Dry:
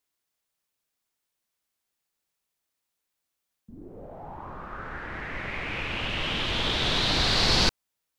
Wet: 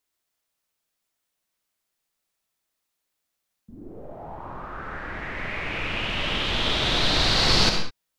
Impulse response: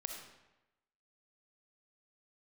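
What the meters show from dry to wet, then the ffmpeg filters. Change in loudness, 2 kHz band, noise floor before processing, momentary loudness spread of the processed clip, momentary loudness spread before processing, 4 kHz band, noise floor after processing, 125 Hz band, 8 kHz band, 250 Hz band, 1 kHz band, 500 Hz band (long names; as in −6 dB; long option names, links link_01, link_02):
+2.5 dB, +2.5 dB, −83 dBFS, 20 LU, 20 LU, +2.5 dB, −81 dBFS, +2.0 dB, +2.5 dB, +2.5 dB, +3.0 dB, +3.0 dB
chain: -filter_complex "[1:a]atrim=start_sample=2205,afade=type=out:start_time=0.26:duration=0.01,atrim=end_sample=11907[link_01];[0:a][link_01]afir=irnorm=-1:irlink=0,volume=4dB"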